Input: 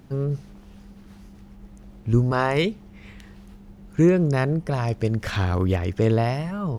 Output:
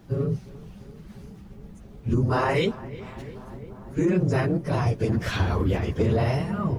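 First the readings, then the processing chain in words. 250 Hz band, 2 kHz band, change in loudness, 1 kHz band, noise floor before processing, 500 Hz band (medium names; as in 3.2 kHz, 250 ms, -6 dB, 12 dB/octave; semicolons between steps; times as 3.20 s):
-2.5 dB, -1.5 dB, -2.0 dB, -1.0 dB, -47 dBFS, -2.0 dB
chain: phase randomisation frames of 50 ms; filtered feedback delay 347 ms, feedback 84%, low-pass 2 kHz, level -19 dB; peak limiter -14 dBFS, peak gain reduction 9 dB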